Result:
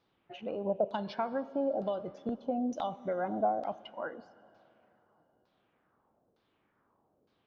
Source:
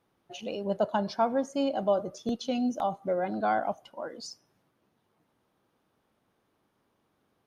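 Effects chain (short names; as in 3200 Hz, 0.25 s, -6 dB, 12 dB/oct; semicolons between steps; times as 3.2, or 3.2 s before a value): compressor, threshold -28 dBFS, peak gain reduction 8 dB; LFO low-pass saw down 1.1 Hz 460–4800 Hz; plate-style reverb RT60 3.3 s, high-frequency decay 1×, DRR 17.5 dB; gain -2.5 dB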